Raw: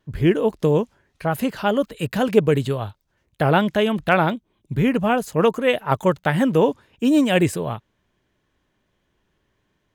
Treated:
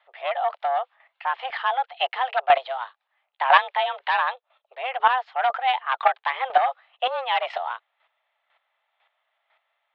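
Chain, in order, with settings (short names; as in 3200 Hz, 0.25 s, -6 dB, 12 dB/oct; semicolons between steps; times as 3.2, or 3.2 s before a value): sine folder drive 7 dB, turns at -3 dBFS; mistuned SSB +260 Hz 430–3300 Hz; chopper 2 Hz, depth 65%, duty 15%; gain -2 dB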